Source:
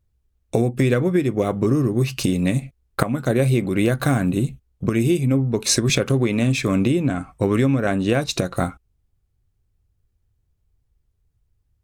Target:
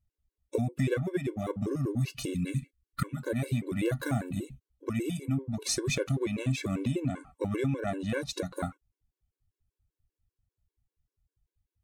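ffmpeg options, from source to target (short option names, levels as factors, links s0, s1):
-filter_complex "[0:a]asettb=1/sr,asplit=3[s0][s1][s2];[s0]atrim=end=2.344[s3];[s1]atrim=start=2.34:end=3.17,asetpts=PTS-STARTPTS,afade=t=in:d=0.004:c=qsin,afade=t=out:st=0.826:d=0.004:c=qsin,asuperstop=centerf=720:order=4:qfactor=0.89[s4];[s2]atrim=start=3.166[s5];[s3][s4]acrossfade=d=0.004:c1=hsin:c2=qsin[s6];[s6][s5]acrossfade=d=0.004:c1=qsin:c2=hsin,afftfilt=real='re*gt(sin(2*PI*5.1*pts/sr)*(1-2*mod(floor(b*sr/1024/290),2)),0)':imag='im*gt(sin(2*PI*5.1*pts/sr)*(1-2*mod(floor(b*sr/1024/290),2)),0)':win_size=1024:overlap=0.75,volume=0.398"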